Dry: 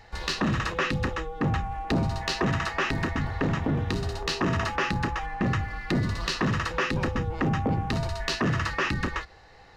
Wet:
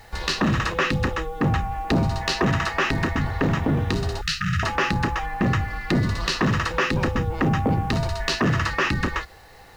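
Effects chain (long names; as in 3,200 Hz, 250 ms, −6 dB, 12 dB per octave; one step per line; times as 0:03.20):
bit reduction 10 bits
0:04.21–0:04.63: linear-phase brick-wall band-stop 200–1,200 Hz
level +4.5 dB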